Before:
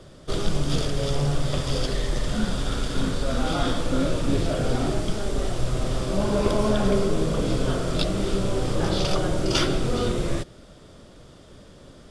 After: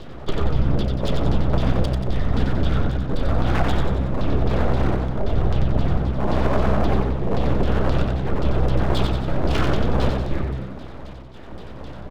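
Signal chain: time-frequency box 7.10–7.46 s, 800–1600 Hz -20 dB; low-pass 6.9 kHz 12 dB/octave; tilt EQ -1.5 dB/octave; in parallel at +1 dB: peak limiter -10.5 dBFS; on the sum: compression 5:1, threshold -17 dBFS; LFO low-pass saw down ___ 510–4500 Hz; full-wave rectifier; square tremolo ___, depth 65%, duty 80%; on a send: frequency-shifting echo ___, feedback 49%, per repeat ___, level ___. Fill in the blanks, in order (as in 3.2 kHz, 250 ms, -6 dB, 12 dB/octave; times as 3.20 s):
3.8 Hz, 0.97 Hz, 91 ms, +64 Hz, -4.5 dB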